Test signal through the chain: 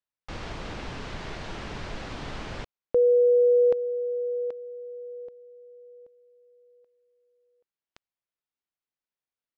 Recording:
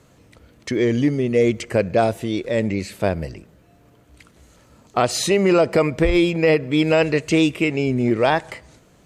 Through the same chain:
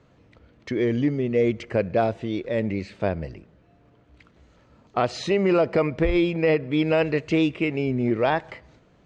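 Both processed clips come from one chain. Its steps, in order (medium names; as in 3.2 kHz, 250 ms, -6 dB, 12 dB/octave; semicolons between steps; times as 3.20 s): Gaussian low-pass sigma 1.8 samples; trim -4 dB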